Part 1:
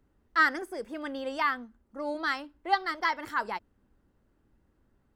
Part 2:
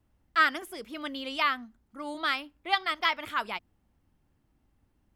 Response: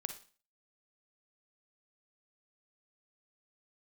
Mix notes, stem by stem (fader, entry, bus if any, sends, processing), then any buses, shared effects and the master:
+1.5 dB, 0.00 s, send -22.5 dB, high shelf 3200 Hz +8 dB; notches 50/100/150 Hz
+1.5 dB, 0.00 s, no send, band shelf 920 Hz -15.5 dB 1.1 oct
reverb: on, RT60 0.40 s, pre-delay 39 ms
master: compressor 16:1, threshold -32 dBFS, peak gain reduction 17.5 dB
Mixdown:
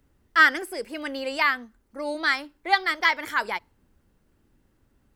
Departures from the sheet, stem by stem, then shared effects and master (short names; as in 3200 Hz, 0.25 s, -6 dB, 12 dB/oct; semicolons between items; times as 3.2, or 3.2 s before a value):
stem 2: polarity flipped; master: missing compressor 16:1, threshold -32 dBFS, peak gain reduction 17.5 dB